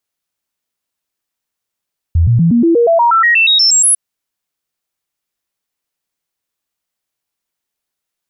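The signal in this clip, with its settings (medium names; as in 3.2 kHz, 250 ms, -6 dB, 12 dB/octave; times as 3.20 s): stepped sine 83.5 Hz up, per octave 2, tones 15, 0.12 s, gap 0.00 s -6.5 dBFS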